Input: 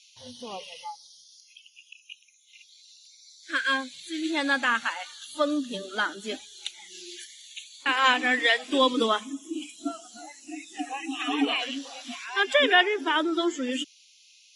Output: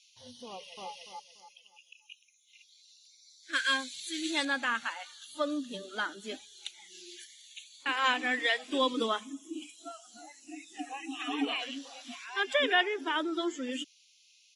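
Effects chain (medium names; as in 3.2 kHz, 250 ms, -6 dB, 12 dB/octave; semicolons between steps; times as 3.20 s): 0.48–0.90 s: echo throw 290 ms, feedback 30%, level -0.5 dB; 3.53–4.45 s: treble shelf 2.8 kHz +11.5 dB; 9.60–10.06 s: high-pass 200 Hz -> 750 Hz 24 dB/octave; trim -6.5 dB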